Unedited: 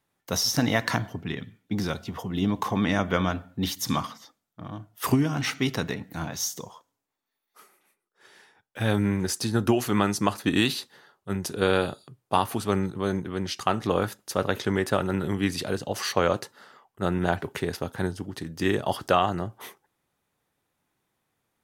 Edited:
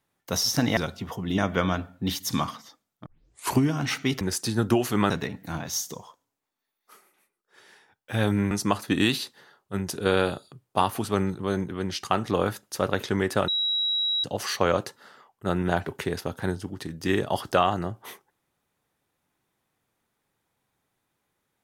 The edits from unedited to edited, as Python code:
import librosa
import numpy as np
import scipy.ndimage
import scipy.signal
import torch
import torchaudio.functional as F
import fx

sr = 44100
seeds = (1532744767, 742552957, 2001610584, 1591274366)

y = fx.edit(x, sr, fx.cut(start_s=0.77, length_s=1.07),
    fx.cut(start_s=2.45, length_s=0.49),
    fx.tape_start(start_s=4.62, length_s=0.5),
    fx.move(start_s=9.18, length_s=0.89, to_s=5.77),
    fx.bleep(start_s=15.04, length_s=0.76, hz=3870.0, db=-22.5), tone=tone)